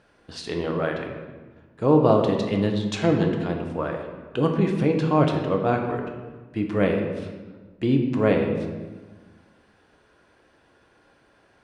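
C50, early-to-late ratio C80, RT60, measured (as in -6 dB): 4.5 dB, 6.5 dB, 1.3 s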